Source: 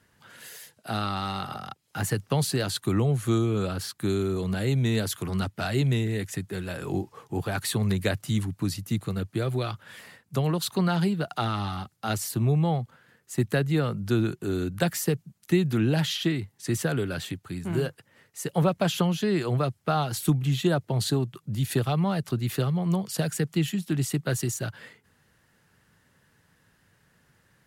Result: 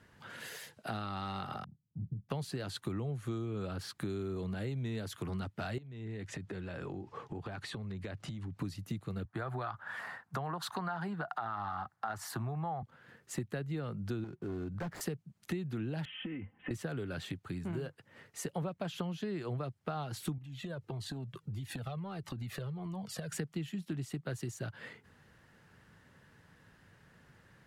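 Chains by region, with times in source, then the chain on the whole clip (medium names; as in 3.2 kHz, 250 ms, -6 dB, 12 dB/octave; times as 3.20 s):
1.64–2.29 s: four-pole ladder low-pass 210 Hz, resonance 40% + doubling 26 ms -13.5 dB
5.78–8.59 s: distance through air 69 m + compression 10:1, threshold -38 dBFS
9.25–12.83 s: high-order bell 1.1 kHz +14 dB + compression 2.5:1, threshold -23 dBFS + three bands expanded up and down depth 40%
14.24–15.01 s: median filter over 15 samples + hard clipper -23 dBFS + compression 4:1, threshold -30 dBFS
16.05–16.71 s: steep low-pass 3.1 kHz 96 dB/octave + compression, threshold -34 dBFS + comb 3.9 ms, depth 71%
20.38–23.32 s: compression, threshold -30 dBFS + Shepard-style flanger falling 1.6 Hz
whole clip: low-pass 3.1 kHz 6 dB/octave; compression 4:1, threshold -41 dBFS; trim +3 dB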